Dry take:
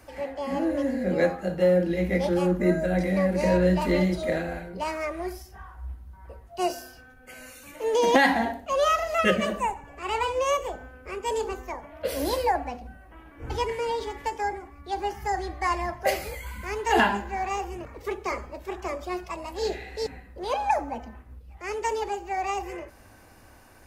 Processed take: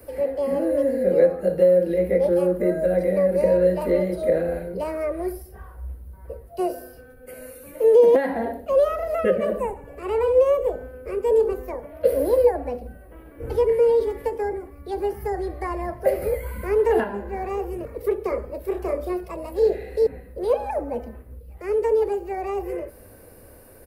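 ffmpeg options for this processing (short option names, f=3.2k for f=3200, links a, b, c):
-filter_complex "[0:a]asettb=1/sr,asplit=3[a][b][c];[a]atrim=end=18.634[d];[b]atrim=start=18.63:end=19.13,asetpts=PTS-STARTPTS,afade=t=in:d=0.004:c=qsin,afade=t=out:st=0.496:d=0.004:c=qsin,asplit=2[e][f];[f]adelay=31,volume=-5dB[g];[e][g]amix=inputs=2:normalize=0,atrim=end_sample=22050[h];[c]atrim=start=19.126[i];[d][h]acrossfade=d=0.004:c1=hsin:c2=qsin[j];[j][i]acrossfade=d=0.004:c1=qsin:c2=hsin,asplit=3[k][l][m];[k]atrim=end=16.222[n];[l]atrim=start=16.218:end=17.042,asetpts=PTS-STARTPTS,volume=4.5dB[o];[m]atrim=start=17.038[p];[n][o]acrossfade=d=0.004:c1=hsin:c2=hsin[q];[q][p]acrossfade=d=0.004:c1=hsin:c2=hsin,equalizer=f=3.6k:t=o:w=1.2:g=-13,acrossover=split=410|2100[r][s][t];[r]acompressor=threshold=-34dB:ratio=4[u];[s]acompressor=threshold=-26dB:ratio=4[v];[t]acompressor=threshold=-56dB:ratio=4[w];[u][v][w]amix=inputs=3:normalize=0,firequalizer=gain_entry='entry(320,0);entry(480,10);entry(780,-7);entry(4100,6);entry(6500,-9);entry(10000,8)':delay=0.05:min_phase=1,volume=4.5dB"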